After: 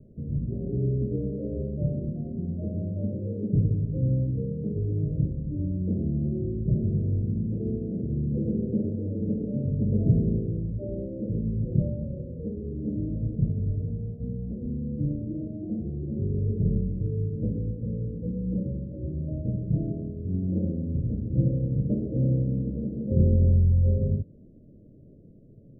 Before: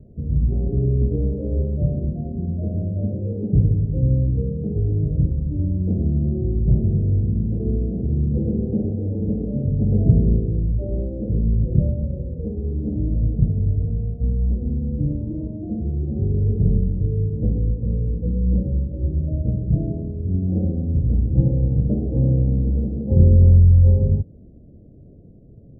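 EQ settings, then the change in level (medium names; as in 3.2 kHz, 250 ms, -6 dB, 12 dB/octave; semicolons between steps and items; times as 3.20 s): elliptic low-pass 630 Hz, stop band 40 dB; peaking EQ 61 Hz -15 dB 0.62 oct; -3.5 dB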